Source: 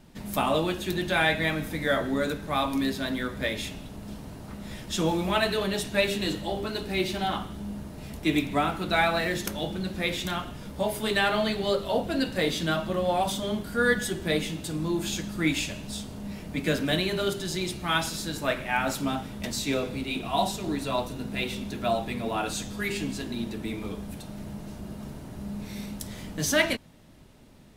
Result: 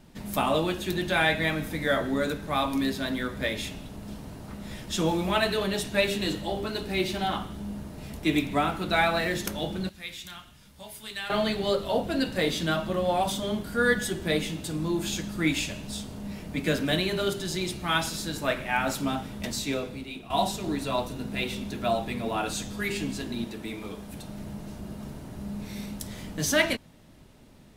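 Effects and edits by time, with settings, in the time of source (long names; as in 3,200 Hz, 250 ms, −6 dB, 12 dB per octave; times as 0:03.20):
0:09.89–0:11.30: guitar amp tone stack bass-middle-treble 5-5-5
0:19.49–0:20.30: fade out, to −12 dB
0:23.44–0:24.14: low-shelf EQ 260 Hz −7 dB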